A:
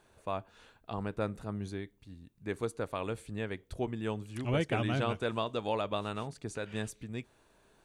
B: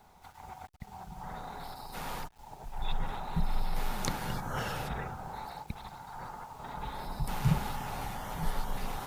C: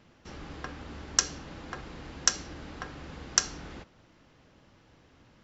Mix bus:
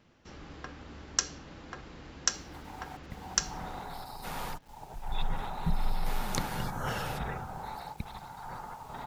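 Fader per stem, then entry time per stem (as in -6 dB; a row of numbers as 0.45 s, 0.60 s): mute, +1.0 dB, -4.0 dB; mute, 2.30 s, 0.00 s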